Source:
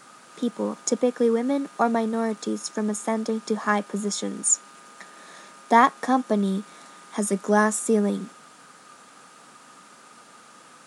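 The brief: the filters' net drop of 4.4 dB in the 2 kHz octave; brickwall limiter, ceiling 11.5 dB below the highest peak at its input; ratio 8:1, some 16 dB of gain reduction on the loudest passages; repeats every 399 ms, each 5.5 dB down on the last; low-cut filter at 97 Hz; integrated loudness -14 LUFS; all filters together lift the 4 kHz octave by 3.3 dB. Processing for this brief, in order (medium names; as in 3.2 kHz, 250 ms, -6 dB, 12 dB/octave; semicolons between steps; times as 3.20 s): high-pass 97 Hz; peaking EQ 2 kHz -6.5 dB; peaking EQ 4 kHz +6 dB; compression 8:1, threshold -29 dBFS; peak limiter -26 dBFS; feedback delay 399 ms, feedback 53%, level -5.5 dB; trim +21.5 dB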